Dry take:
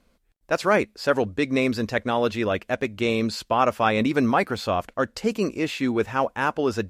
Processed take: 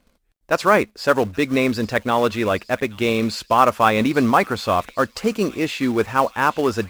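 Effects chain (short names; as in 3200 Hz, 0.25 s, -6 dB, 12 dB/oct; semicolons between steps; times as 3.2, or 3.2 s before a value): dynamic EQ 1100 Hz, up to +5 dB, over -36 dBFS, Q 2.4; in parallel at -7 dB: companded quantiser 4-bit; on the sum: thin delay 0.824 s, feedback 68%, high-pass 2600 Hz, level -16 dB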